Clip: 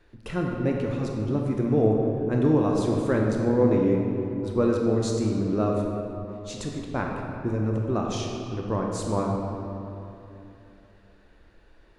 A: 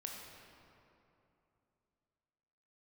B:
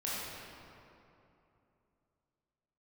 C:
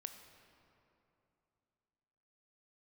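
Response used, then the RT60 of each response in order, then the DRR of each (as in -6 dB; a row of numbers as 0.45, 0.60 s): A; 2.9, 2.9, 2.9 s; -0.5, -8.5, 7.0 dB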